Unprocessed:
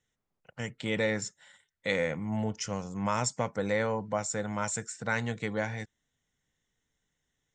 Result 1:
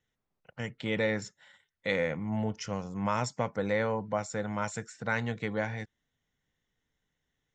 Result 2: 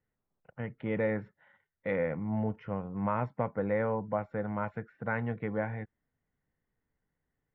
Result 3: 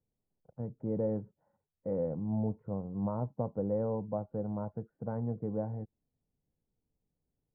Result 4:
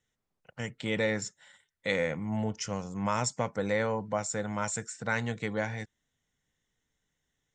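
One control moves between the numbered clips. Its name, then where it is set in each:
Bessel low-pass, frequency: 4.6 kHz, 1.4 kHz, 540 Hz, 12 kHz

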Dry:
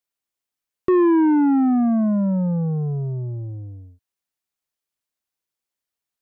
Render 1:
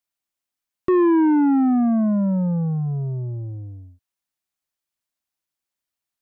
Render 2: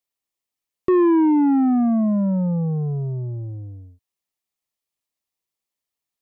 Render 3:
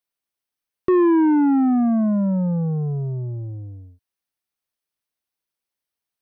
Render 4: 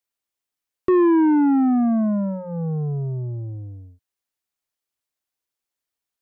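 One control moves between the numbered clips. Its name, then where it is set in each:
band-stop, frequency: 450 Hz, 1.5 kHz, 7.1 kHz, 180 Hz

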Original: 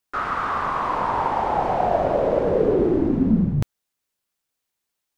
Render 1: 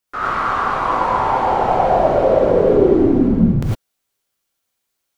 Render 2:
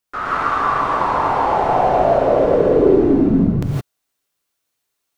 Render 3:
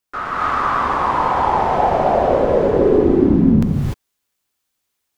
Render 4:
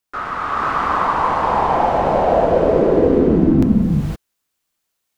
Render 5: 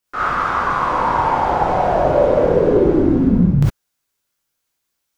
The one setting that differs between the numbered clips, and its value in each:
gated-style reverb, gate: 130 ms, 190 ms, 320 ms, 540 ms, 80 ms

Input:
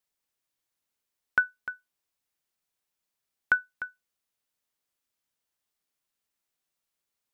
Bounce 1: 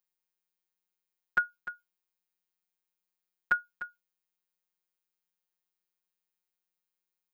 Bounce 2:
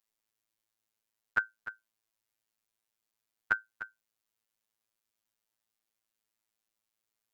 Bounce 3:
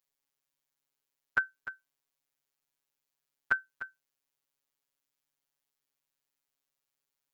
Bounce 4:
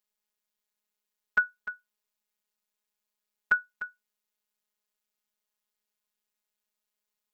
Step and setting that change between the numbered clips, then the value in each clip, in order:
robot voice, frequency: 180 Hz, 110 Hz, 140 Hz, 210 Hz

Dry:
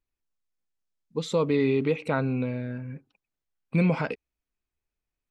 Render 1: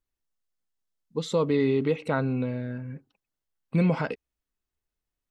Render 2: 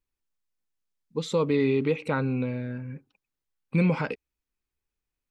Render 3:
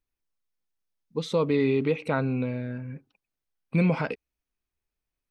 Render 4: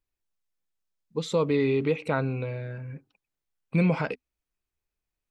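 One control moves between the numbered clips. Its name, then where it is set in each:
band-stop, frequency: 2.4 kHz, 670 Hz, 7.3 kHz, 250 Hz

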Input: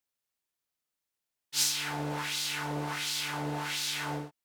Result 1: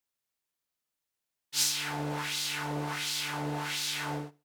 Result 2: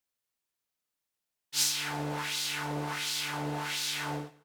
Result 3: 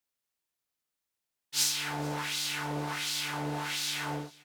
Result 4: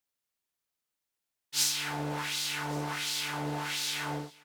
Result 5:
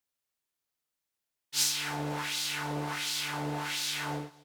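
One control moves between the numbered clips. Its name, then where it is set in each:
feedback delay, time: 75 ms, 168 ms, 441 ms, 1126 ms, 248 ms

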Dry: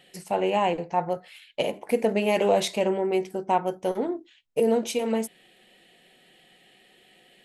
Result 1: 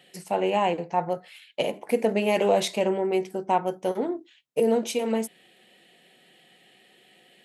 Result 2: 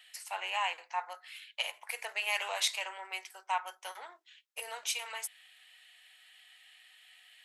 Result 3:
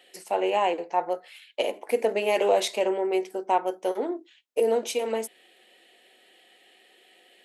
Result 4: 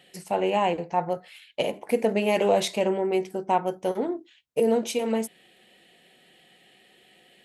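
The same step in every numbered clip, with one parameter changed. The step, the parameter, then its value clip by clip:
high-pass, cutoff frequency: 110 Hz, 1.1 kHz, 300 Hz, 43 Hz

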